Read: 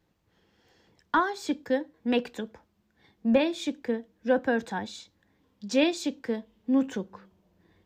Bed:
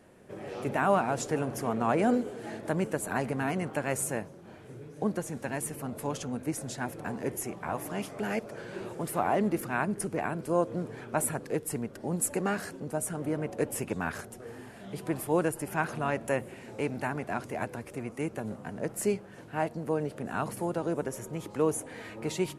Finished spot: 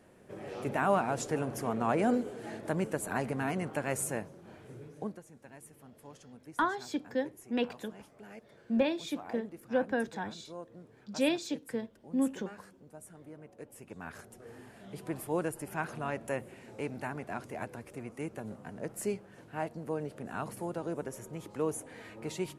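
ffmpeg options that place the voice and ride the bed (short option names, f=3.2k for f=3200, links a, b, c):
-filter_complex "[0:a]adelay=5450,volume=-5.5dB[a];[1:a]volume=10dB,afade=t=out:st=4.85:d=0.35:silence=0.16788,afade=t=in:st=13.77:d=0.78:silence=0.237137[b];[a][b]amix=inputs=2:normalize=0"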